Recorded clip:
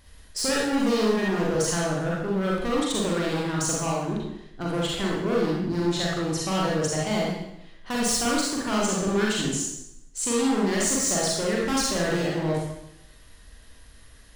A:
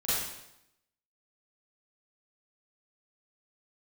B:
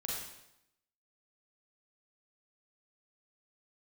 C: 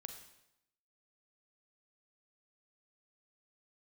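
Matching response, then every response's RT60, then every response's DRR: B; 0.85, 0.85, 0.85 s; -13.0, -4.0, 5.5 dB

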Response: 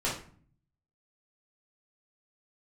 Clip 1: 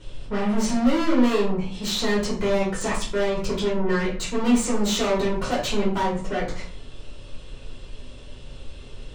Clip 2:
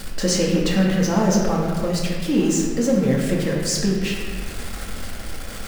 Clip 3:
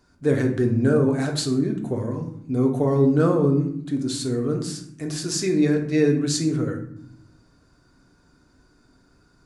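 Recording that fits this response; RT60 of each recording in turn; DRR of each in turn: 1; 0.45, 1.5, 0.75 s; -6.0, -3.5, 2.5 dB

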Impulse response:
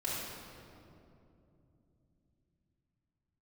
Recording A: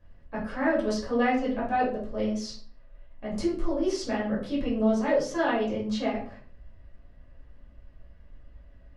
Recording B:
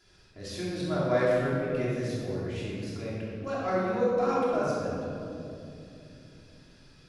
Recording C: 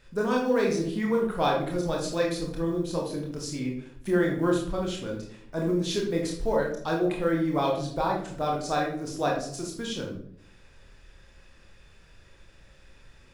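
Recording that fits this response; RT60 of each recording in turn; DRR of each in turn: B; 0.45, 2.8, 0.65 s; -8.5, -8.0, -1.5 dB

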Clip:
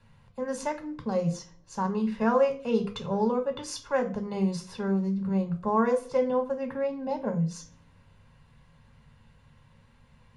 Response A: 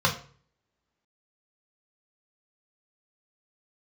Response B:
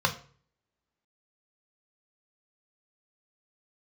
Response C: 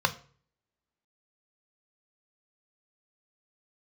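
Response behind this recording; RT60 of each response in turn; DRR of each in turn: B; 0.45, 0.45, 0.45 s; -0.5, 4.0, 8.5 dB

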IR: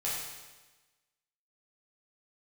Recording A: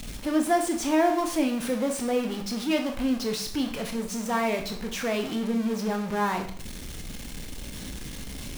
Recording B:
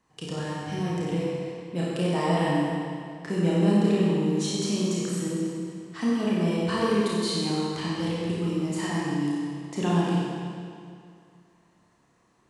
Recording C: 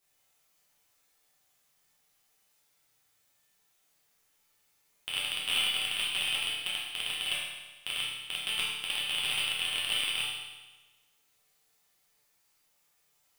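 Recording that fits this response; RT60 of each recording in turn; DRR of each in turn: C; 0.50, 2.3, 1.2 s; 4.0, -7.0, -7.5 dB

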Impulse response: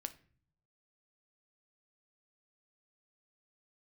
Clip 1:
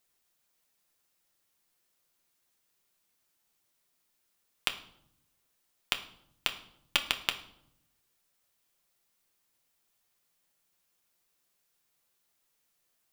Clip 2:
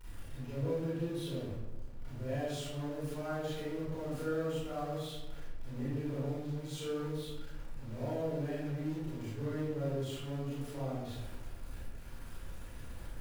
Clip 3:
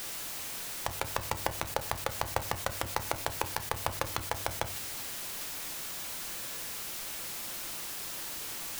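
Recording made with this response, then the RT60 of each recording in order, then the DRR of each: 3; 0.75, 1.1, 0.45 s; 5.0, -10.0, 9.0 dB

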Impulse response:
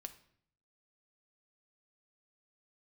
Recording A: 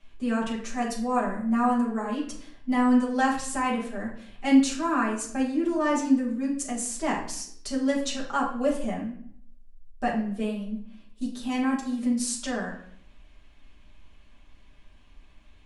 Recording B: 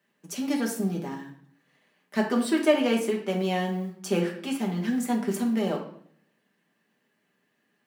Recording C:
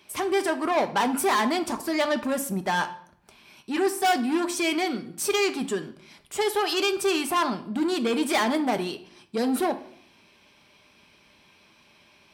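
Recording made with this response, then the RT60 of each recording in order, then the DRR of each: C; 0.60, 0.60, 0.60 s; -6.0, -1.5, 7.5 dB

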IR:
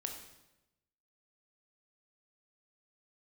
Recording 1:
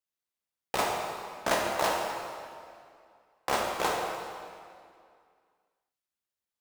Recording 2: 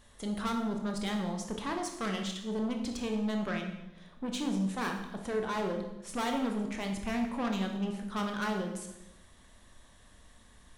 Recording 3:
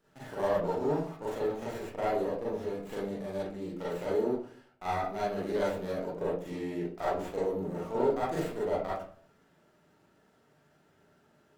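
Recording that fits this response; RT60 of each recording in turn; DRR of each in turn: 2; 2.3, 0.95, 0.50 s; -1.0, 2.5, -8.5 dB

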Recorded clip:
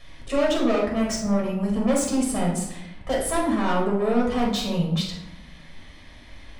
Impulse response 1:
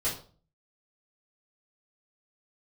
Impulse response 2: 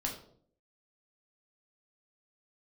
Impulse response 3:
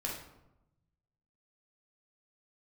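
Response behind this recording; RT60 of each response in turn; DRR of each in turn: 3; 0.40, 0.60, 0.90 s; -10.5, -0.5, -3.0 dB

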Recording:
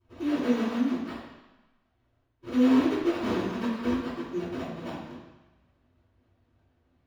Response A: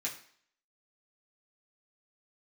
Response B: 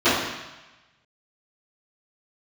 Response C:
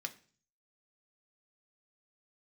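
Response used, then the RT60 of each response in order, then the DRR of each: B; 0.55, 1.1, 0.40 s; -5.5, -19.5, 5.0 dB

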